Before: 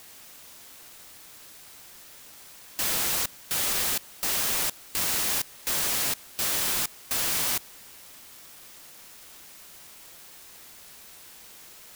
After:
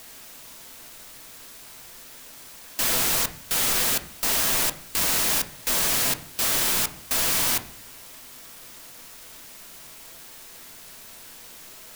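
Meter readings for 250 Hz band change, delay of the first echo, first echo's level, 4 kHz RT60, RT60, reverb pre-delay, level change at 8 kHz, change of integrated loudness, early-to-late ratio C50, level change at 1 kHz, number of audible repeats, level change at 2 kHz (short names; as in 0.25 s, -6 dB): +6.0 dB, none, none, 0.45 s, 0.45 s, 3 ms, +3.5 dB, +3.5 dB, 15.0 dB, +4.5 dB, none, +4.0 dB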